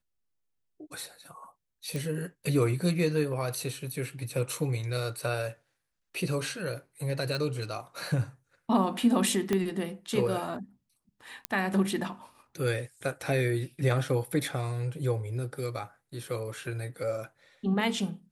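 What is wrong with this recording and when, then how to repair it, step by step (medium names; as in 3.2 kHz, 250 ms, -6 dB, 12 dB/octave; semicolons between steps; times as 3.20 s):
1.96 s: pop
7.35 s: pop
9.53 s: pop -14 dBFS
11.45 s: pop -13 dBFS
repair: de-click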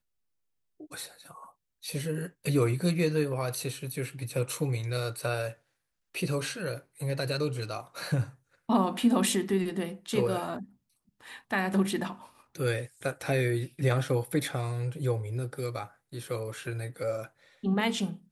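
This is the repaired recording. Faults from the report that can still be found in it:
7.35 s: pop
9.53 s: pop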